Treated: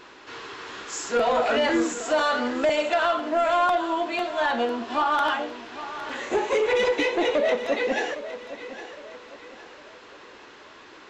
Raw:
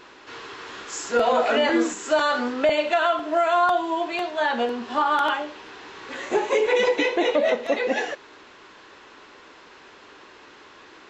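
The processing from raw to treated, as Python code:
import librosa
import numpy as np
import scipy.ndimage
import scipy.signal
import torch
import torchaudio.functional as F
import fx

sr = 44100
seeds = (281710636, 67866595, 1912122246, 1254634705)

y = 10.0 ** (-15.0 / 20.0) * np.tanh(x / 10.0 ** (-15.0 / 20.0))
y = fx.echo_feedback(y, sr, ms=810, feedback_pct=40, wet_db=-13.5)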